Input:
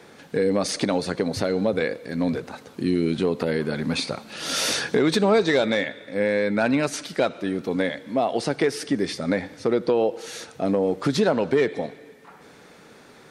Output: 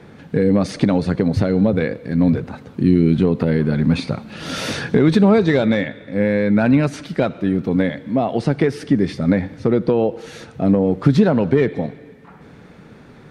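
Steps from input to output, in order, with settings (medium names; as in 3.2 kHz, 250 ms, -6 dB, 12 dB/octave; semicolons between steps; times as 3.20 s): tone controls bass +14 dB, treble -10 dB; trim +1.5 dB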